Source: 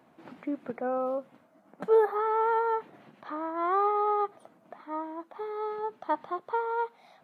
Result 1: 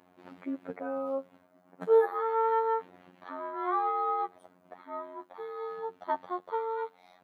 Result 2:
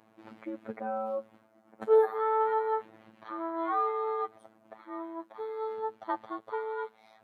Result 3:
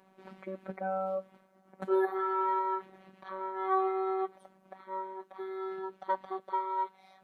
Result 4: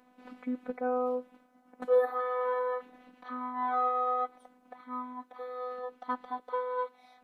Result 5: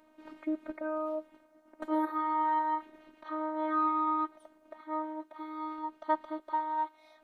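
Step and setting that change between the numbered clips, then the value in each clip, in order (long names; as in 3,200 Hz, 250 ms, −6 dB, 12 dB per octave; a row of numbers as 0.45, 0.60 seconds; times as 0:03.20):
phases set to zero, frequency: 90, 110, 190, 250, 310 Hertz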